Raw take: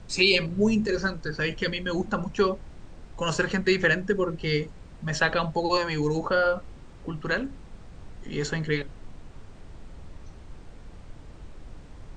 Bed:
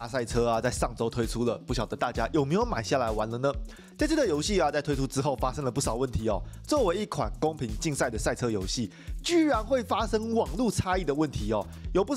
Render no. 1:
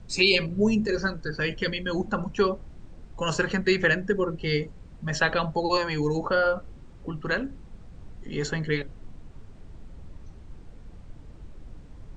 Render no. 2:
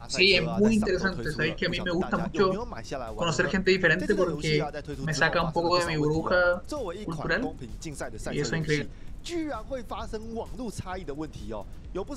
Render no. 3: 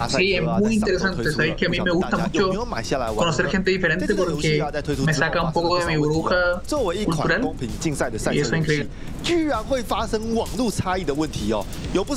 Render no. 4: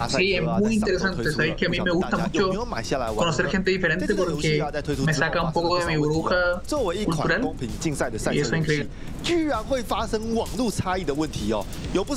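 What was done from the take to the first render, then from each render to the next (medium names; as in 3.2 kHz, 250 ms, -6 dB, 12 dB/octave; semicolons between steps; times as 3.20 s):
noise reduction 6 dB, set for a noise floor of -46 dBFS
add bed -8.5 dB
in parallel at 0 dB: peak limiter -17.5 dBFS, peak gain reduction 10.5 dB; on the sum: three bands compressed up and down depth 100%
trim -2 dB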